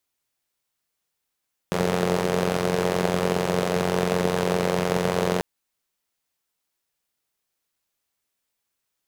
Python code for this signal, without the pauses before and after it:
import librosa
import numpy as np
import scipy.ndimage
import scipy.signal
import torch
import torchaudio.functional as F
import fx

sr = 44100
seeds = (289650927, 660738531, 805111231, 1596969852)

y = fx.engine_four(sr, seeds[0], length_s=3.69, rpm=2700, resonances_hz=(180.0, 430.0))